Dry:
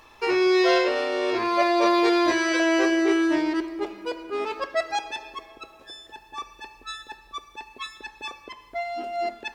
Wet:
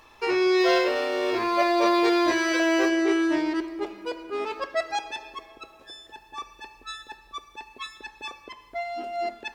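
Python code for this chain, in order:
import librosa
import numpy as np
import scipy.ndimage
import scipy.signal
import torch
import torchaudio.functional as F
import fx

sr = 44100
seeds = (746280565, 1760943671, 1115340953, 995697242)

y = fx.law_mismatch(x, sr, coded='mu', at=(0.6, 2.89))
y = y * librosa.db_to_amplitude(-1.5)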